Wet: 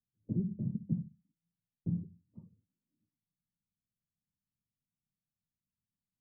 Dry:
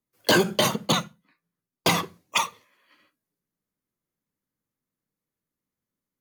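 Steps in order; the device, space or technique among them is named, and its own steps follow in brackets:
the neighbour's flat through the wall (low-pass filter 210 Hz 24 dB per octave; parametric band 89 Hz +3.5 dB)
level −4 dB

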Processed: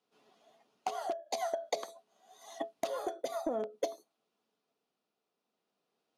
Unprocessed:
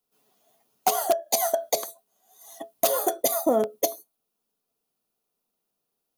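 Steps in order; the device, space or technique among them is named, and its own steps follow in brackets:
AM radio (band-pass filter 180–4,100 Hz; downward compressor 8 to 1, threshold −33 dBFS, peak gain reduction 16 dB; soft clipping −21.5 dBFS, distortion −23 dB; amplitude tremolo 0.48 Hz, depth 37%)
level +4.5 dB

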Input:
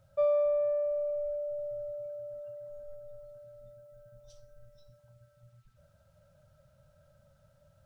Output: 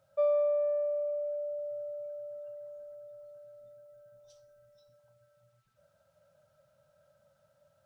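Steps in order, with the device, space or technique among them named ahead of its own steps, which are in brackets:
filter by subtraction (in parallel: low-pass filter 530 Hz 12 dB per octave + polarity inversion)
on the sum: level −2.5 dB

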